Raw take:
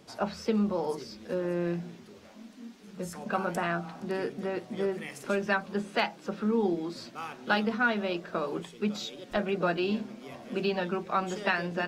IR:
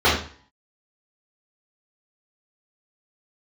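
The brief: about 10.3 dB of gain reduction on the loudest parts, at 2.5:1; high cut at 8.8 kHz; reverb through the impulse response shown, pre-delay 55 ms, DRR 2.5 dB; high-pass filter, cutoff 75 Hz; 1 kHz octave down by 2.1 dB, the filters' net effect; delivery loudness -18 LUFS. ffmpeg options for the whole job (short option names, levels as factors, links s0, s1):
-filter_complex "[0:a]highpass=75,lowpass=8800,equalizer=f=1000:t=o:g=-3,acompressor=threshold=0.0112:ratio=2.5,asplit=2[s0][s1];[1:a]atrim=start_sample=2205,adelay=55[s2];[s1][s2]afir=irnorm=-1:irlink=0,volume=0.0562[s3];[s0][s3]amix=inputs=2:normalize=0,volume=9.44"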